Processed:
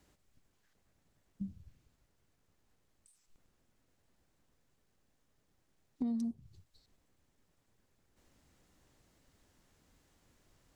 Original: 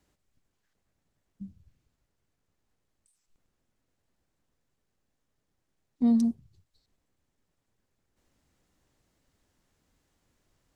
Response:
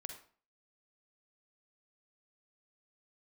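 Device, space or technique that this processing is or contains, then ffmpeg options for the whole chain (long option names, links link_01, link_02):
serial compression, leveller first: -af "acompressor=threshold=-27dB:ratio=2,acompressor=threshold=-39dB:ratio=4,volume=3.5dB"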